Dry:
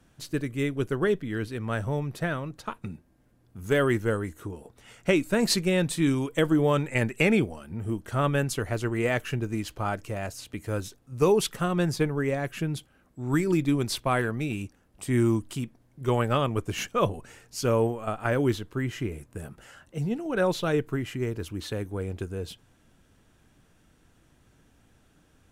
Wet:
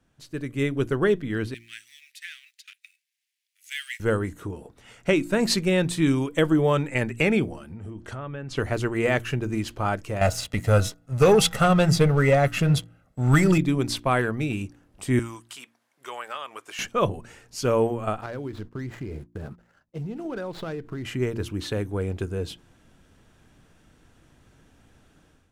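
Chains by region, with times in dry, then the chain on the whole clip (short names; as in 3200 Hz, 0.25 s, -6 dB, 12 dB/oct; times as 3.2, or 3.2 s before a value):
1.54–4 G.711 law mismatch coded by A + steep high-pass 2000 Hz 48 dB/oct
7.62–8.57 treble ducked by the level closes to 2800 Hz, closed at -21 dBFS + compressor 10:1, threshold -34 dBFS
10.21–13.58 comb 1.5 ms, depth 63% + de-hum 161.1 Hz, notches 12 + sample leveller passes 2
15.19–16.79 HPF 1000 Hz + compressor 2:1, threshold -40 dBFS
18.21–21.05 median filter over 15 samples + expander -44 dBFS + compressor 12:1, threshold -33 dBFS
whole clip: high shelf 11000 Hz -8.5 dB; de-hum 57.88 Hz, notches 6; AGC gain up to 11.5 dB; gain -7 dB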